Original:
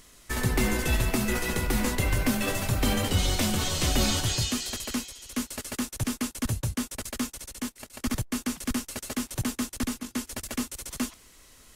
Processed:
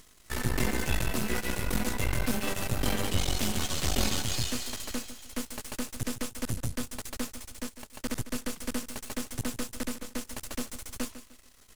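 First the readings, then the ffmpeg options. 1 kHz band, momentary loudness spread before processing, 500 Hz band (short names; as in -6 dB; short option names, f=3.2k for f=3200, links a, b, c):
-3.5 dB, 9 LU, -3.0 dB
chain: -af "aeval=exprs='max(val(0),0)':c=same,aecho=1:1:151|302|453:0.224|0.0672|0.0201"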